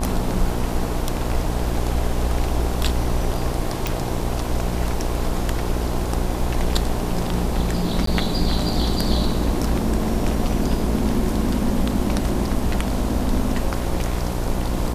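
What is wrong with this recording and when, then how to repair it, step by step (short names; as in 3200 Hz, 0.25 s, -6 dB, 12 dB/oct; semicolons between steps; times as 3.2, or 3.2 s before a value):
buzz 60 Hz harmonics 18 -26 dBFS
3.87 pop
8.06–8.07 gap 13 ms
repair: de-click; de-hum 60 Hz, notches 18; interpolate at 8.06, 13 ms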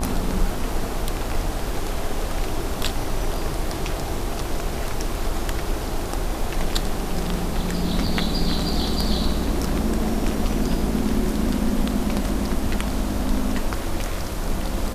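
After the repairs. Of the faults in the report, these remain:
none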